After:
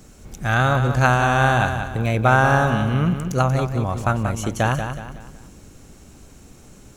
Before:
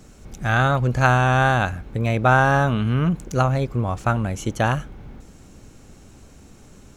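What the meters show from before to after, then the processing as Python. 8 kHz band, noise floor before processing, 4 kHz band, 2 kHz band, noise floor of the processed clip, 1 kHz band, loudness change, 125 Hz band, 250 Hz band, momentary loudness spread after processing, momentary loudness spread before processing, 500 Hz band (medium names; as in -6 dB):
+3.5 dB, -47 dBFS, +1.5 dB, +1.0 dB, -47 dBFS, +1.0 dB, +0.5 dB, +0.5 dB, +0.5 dB, 9 LU, 9 LU, +1.0 dB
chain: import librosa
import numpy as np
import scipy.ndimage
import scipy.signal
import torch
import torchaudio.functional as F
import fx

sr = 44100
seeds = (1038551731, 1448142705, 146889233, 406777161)

p1 = fx.high_shelf(x, sr, hz=8500.0, db=7.0)
y = p1 + fx.echo_feedback(p1, sr, ms=185, feedback_pct=39, wet_db=-8, dry=0)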